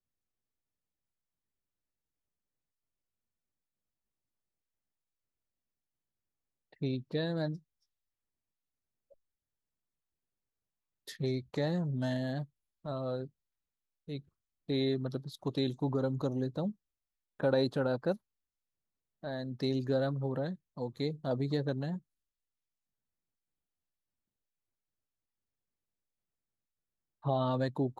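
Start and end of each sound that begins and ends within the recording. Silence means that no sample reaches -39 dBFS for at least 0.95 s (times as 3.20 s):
6.82–7.56 s
11.08–18.15 s
19.24–21.98 s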